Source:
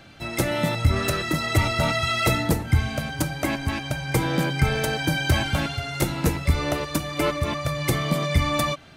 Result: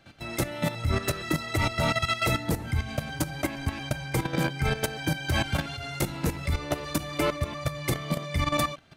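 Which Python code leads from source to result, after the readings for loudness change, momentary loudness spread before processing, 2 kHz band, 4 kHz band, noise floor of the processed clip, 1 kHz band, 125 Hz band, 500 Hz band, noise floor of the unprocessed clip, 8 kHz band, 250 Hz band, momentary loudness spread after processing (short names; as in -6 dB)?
-5.0 dB, 5 LU, -5.0 dB, -5.0 dB, -38 dBFS, -4.0 dB, -5.5 dB, -4.5 dB, -35 dBFS, -4.0 dB, -4.5 dB, 6 LU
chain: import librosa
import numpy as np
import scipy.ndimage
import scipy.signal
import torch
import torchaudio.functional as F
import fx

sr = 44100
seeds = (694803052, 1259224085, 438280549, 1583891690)

y = fx.level_steps(x, sr, step_db=12)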